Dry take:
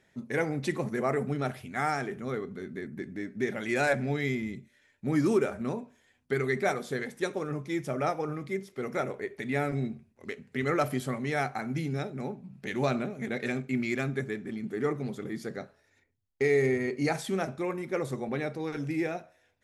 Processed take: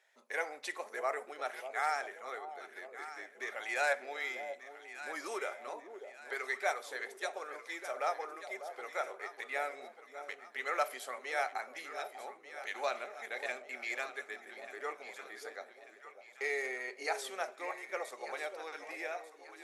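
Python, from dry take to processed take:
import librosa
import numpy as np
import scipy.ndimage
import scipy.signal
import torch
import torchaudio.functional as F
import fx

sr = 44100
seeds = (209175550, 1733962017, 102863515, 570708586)

p1 = scipy.signal.sosfilt(scipy.signal.butter(4, 590.0, 'highpass', fs=sr, output='sos'), x)
p2 = p1 + fx.echo_alternate(p1, sr, ms=595, hz=800.0, feedback_pct=63, wet_db=-8, dry=0)
y = F.gain(torch.from_numpy(p2), -3.0).numpy()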